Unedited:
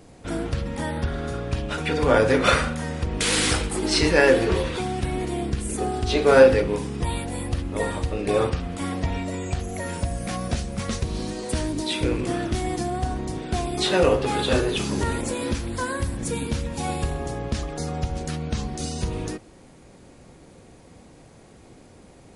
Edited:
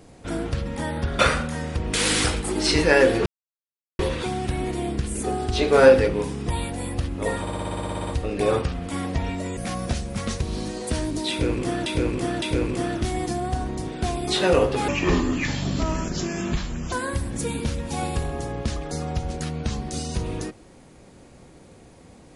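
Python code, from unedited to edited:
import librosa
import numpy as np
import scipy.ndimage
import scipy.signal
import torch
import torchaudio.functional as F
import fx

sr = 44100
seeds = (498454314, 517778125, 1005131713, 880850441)

y = fx.edit(x, sr, fx.cut(start_s=1.19, length_s=1.27),
    fx.insert_silence(at_s=4.53, length_s=0.73),
    fx.stutter(start_s=7.95, slice_s=0.06, count=12),
    fx.cut(start_s=9.45, length_s=0.74),
    fx.repeat(start_s=11.92, length_s=0.56, count=3),
    fx.speed_span(start_s=14.38, length_s=1.41, speed=0.69), tone=tone)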